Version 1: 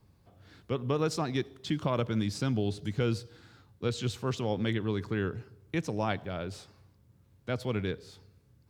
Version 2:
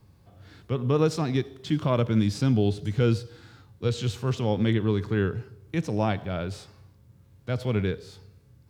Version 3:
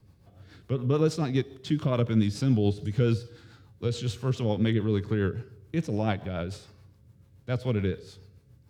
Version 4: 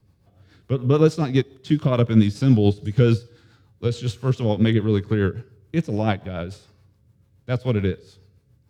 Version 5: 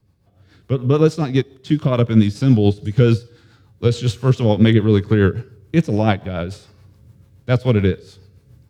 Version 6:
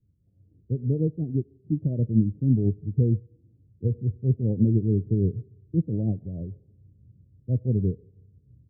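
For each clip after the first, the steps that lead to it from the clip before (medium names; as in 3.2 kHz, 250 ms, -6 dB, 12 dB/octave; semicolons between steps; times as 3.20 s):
harmonic-percussive split harmonic +8 dB
rotary cabinet horn 7 Hz
upward expansion 1.5:1, over -41 dBFS; trim +9 dB
level rider gain up to 14.5 dB; trim -1 dB
Gaussian low-pass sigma 23 samples; trim -6 dB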